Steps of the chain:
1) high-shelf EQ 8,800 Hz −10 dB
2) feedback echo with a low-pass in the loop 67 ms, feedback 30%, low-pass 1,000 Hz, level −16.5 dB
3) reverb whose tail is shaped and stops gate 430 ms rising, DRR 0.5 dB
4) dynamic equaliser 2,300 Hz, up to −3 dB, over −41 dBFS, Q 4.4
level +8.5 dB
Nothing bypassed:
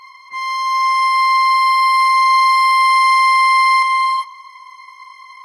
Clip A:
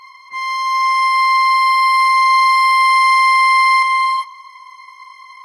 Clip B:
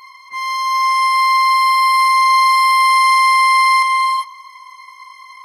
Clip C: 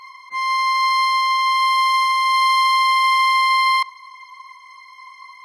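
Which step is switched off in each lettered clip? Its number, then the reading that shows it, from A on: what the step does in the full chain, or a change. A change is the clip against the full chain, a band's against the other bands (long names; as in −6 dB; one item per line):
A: 4, 2 kHz band +1.5 dB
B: 1, 8 kHz band +4.5 dB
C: 3, change in momentary loudness spread −5 LU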